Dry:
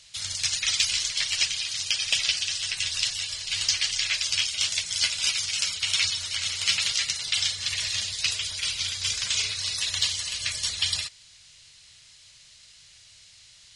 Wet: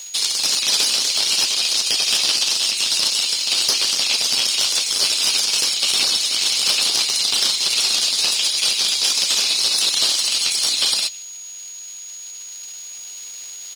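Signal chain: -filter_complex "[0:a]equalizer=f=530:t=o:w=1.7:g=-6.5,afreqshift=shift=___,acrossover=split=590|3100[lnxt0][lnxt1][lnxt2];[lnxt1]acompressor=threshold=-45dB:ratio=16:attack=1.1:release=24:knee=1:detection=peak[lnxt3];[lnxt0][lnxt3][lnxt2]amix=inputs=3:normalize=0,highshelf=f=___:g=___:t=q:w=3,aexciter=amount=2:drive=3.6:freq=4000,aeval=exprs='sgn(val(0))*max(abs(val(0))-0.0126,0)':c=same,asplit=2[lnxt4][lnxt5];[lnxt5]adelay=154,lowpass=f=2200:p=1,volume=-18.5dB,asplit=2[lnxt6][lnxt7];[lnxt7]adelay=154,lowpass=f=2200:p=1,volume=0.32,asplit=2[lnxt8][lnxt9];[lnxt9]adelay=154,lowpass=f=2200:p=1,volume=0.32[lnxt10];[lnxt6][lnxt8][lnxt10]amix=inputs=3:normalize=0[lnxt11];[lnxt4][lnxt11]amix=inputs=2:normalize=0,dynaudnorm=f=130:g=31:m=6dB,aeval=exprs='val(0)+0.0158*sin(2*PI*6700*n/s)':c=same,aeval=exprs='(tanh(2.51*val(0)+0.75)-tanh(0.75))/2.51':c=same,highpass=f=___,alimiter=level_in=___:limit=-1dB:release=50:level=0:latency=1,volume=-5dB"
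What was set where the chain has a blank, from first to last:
23, 1800, 10.5, 250, 13dB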